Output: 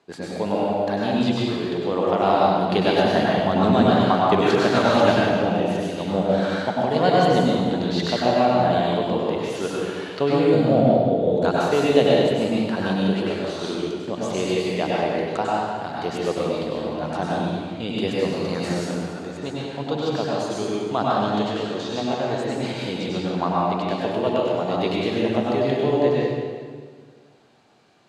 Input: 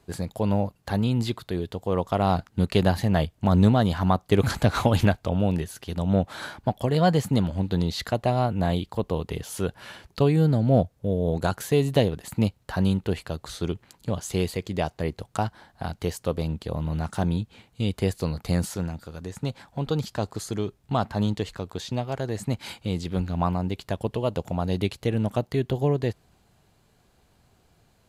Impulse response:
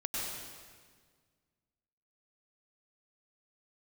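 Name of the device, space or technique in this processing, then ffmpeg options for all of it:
supermarket ceiling speaker: -filter_complex "[0:a]highpass=270,lowpass=5200[s0];[1:a]atrim=start_sample=2205[s1];[s0][s1]afir=irnorm=-1:irlink=0,volume=1.5"

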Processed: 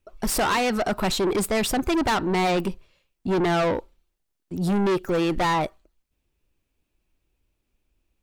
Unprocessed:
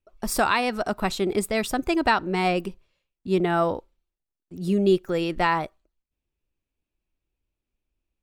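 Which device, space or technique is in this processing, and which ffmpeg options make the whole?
saturation between pre-emphasis and de-emphasis: -af "highshelf=f=10000:g=8,asoftclip=type=tanh:threshold=0.0376,highshelf=f=10000:g=-8,volume=2.82"

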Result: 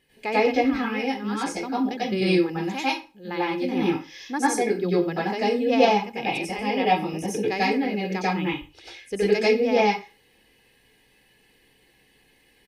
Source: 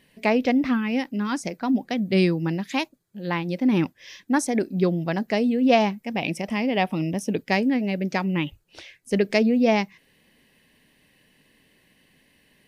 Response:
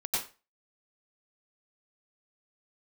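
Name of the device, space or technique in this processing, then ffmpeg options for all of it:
microphone above a desk: -filter_complex "[0:a]aecho=1:1:2.4:0.53[s0];[1:a]atrim=start_sample=2205[s1];[s0][s1]afir=irnorm=-1:irlink=0,volume=0.531"

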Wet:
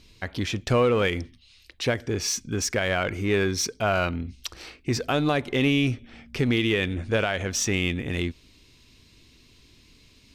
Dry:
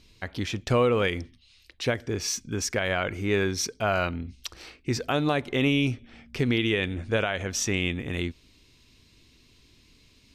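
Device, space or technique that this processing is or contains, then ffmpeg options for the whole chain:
parallel distortion: -filter_complex "[0:a]asplit=2[s0][s1];[s1]asoftclip=type=hard:threshold=0.0447,volume=0.398[s2];[s0][s2]amix=inputs=2:normalize=0"

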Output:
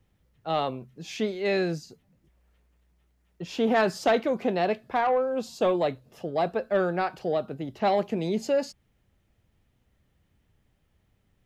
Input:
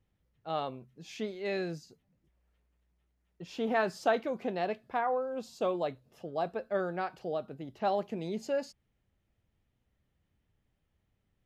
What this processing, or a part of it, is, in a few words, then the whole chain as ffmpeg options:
one-band saturation: -filter_complex "[0:a]acrossover=split=430|2500[s0][s1][s2];[s1]asoftclip=type=tanh:threshold=0.0398[s3];[s0][s3][s2]amix=inputs=3:normalize=0,volume=2.66"

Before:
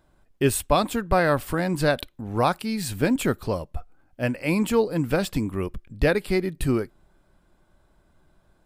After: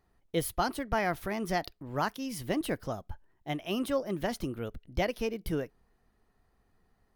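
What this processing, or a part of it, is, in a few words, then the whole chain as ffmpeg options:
nightcore: -af "asetrate=53361,aresample=44100,volume=0.355"

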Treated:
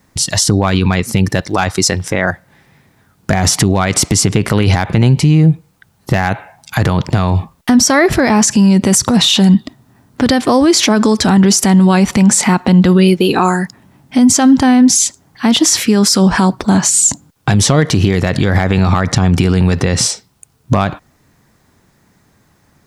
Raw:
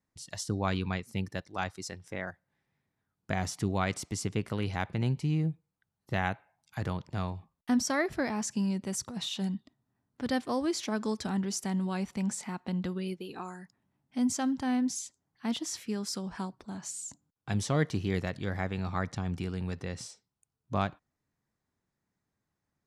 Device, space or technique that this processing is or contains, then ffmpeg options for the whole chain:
loud club master: -af "acompressor=threshold=0.0282:ratio=3,asoftclip=type=hard:threshold=0.0708,alimiter=level_in=37.6:limit=0.891:release=50:level=0:latency=1,volume=0.891"

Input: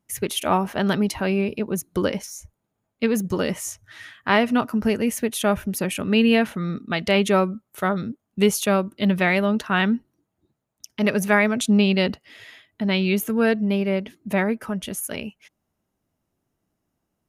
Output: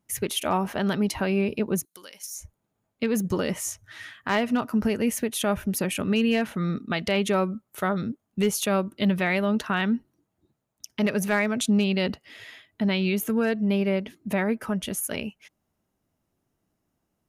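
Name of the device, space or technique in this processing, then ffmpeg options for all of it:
clipper into limiter: -filter_complex "[0:a]asoftclip=type=hard:threshold=0.355,alimiter=limit=0.188:level=0:latency=1:release=196,asettb=1/sr,asplit=3[s0][s1][s2];[s0]atrim=end=1.854[s3];[s1]atrim=start=1.85:end=2.35,asetpts=PTS-STARTPTS,afade=t=in:d=0.004:c=qsin,afade=t=out:st=0.496:d=0.004:c=qsin,aderivative[s4];[s2]atrim=start=2.346[s5];[s3][s4]acrossfade=d=0.004:c1=hsin:c2=qsin[s6];[s6][s5]acrossfade=d=0.004:c1=qsin:c2=hsin"

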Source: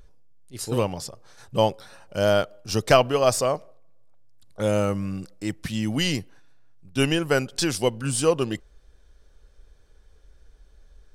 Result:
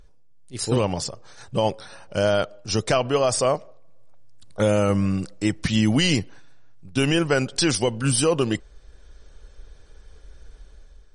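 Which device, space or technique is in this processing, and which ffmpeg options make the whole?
low-bitrate web radio: -af "dynaudnorm=f=140:g=7:m=2.66,alimiter=limit=0.316:level=0:latency=1:release=43" -ar 48000 -c:a libmp3lame -b:a 40k

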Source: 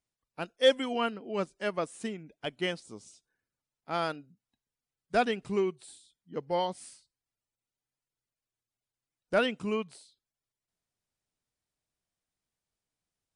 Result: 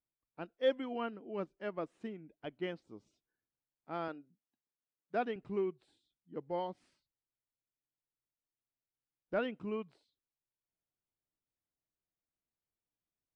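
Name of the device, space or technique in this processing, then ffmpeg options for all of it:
phone in a pocket: -filter_complex "[0:a]lowpass=3600,equalizer=f=320:t=o:w=0.4:g=5,highshelf=f=2400:g=-9,asettb=1/sr,asplit=3[s0][s1][s2];[s0]atrim=end=4.084[s3];[s1]atrim=start=4.08:end=5.36,asetpts=PTS-STARTPTS,afade=t=in:d=0.004:c=qsin,afade=t=out:st=1.276:d=0.004:c=qsin,highpass=190[s4];[s2]atrim=start=5.356[s5];[s3][s4]acrossfade=d=0.004:c1=hsin:c2=qsin[s6];[s6][s5]acrossfade=d=0.004:c1=qsin:c2=hsin,volume=0.422"

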